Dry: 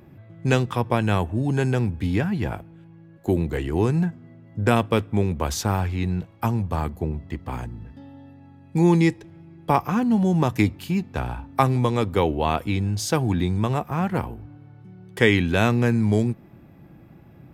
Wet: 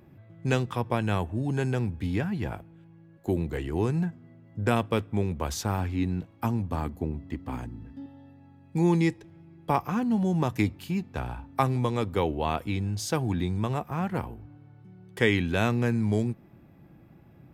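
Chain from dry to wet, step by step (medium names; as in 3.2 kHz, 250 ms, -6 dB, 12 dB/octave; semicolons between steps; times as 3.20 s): 5.78–8.06 s: peaking EQ 270 Hz +10.5 dB 0.28 oct; trim -5.5 dB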